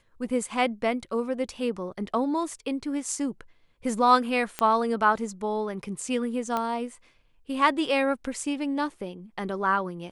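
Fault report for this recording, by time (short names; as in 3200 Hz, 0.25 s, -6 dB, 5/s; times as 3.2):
4.59 pop -12 dBFS
6.57 pop -15 dBFS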